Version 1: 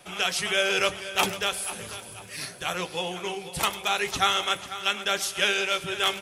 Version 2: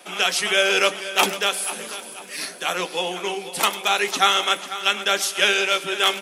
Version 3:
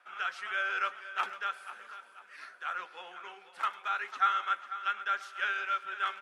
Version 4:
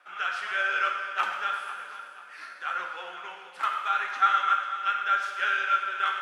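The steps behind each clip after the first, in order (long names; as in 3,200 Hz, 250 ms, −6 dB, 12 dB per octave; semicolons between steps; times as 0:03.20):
Butterworth high-pass 200 Hz 36 dB per octave; level +5.5 dB
resonant band-pass 1,400 Hz, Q 4.5; level −4.5 dB
reverb whose tail is shaped and stops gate 480 ms falling, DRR 1.5 dB; level +3.5 dB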